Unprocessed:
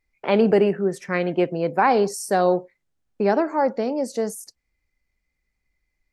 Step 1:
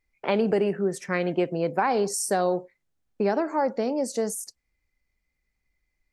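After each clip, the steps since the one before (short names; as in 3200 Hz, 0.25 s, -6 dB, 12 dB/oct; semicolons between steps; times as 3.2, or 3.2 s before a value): dynamic EQ 8100 Hz, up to +6 dB, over -49 dBFS, Q 0.97; compressor 4:1, threshold -18 dBFS, peak gain reduction 5.5 dB; gain -1.5 dB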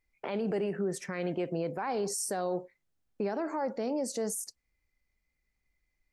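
limiter -21.5 dBFS, peak gain reduction 11.5 dB; gain -2.5 dB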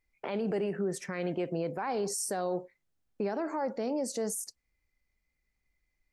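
nothing audible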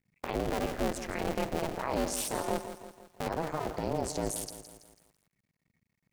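cycle switcher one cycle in 2, muted; ring modulator 160 Hz; lo-fi delay 0.165 s, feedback 55%, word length 10-bit, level -11 dB; gain +5.5 dB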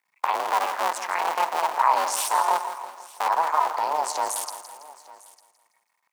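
echo 0.901 s -21 dB; in parallel at -7 dB: short-mantissa float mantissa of 2-bit; on the sum: resonant high-pass 960 Hz, resonance Q 4.9; gain +4 dB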